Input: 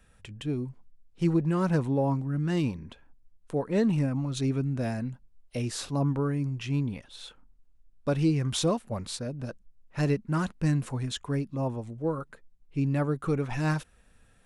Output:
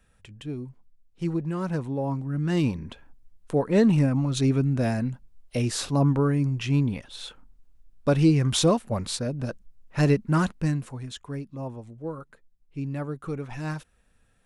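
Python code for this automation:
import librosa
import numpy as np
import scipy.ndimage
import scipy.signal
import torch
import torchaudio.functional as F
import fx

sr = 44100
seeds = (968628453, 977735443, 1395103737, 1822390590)

y = fx.gain(x, sr, db=fx.line((1.95, -3.0), (2.78, 5.5), (10.44, 5.5), (10.91, -4.5)))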